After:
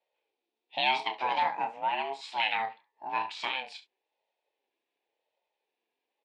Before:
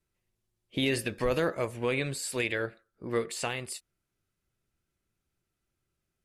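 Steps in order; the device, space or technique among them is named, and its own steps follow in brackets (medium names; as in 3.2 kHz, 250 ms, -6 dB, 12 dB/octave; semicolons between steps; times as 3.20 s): 1.55–2.21 s: peaking EQ 3.5 kHz -13 dB 1 oct; early reflections 29 ms -7.5 dB, 69 ms -15.5 dB; voice changer toy (ring modulator with a swept carrier 440 Hz, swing 25%, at 0.93 Hz; cabinet simulation 480–4700 Hz, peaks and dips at 860 Hz +9 dB, 1.3 kHz -6 dB, 2.5 kHz +9 dB, 3.6 kHz +6 dB)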